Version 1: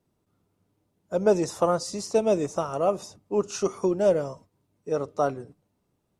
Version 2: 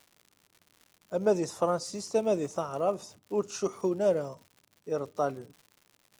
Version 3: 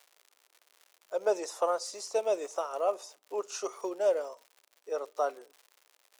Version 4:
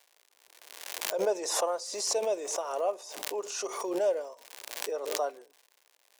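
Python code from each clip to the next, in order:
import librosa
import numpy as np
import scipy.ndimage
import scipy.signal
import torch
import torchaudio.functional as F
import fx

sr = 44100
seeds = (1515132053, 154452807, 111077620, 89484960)

y1 = scipy.signal.sosfilt(scipy.signal.butter(2, 87.0, 'highpass', fs=sr, output='sos'), x)
y1 = fx.dmg_crackle(y1, sr, seeds[0], per_s=180.0, level_db=-40.0)
y1 = y1 * librosa.db_to_amplitude(-4.5)
y2 = scipy.signal.sosfilt(scipy.signal.butter(4, 450.0, 'highpass', fs=sr, output='sos'), y1)
y3 = fx.notch(y2, sr, hz=1300.0, q=6.5)
y3 = fx.pre_swell(y3, sr, db_per_s=47.0)
y3 = y3 * librosa.db_to_amplitude(-1.5)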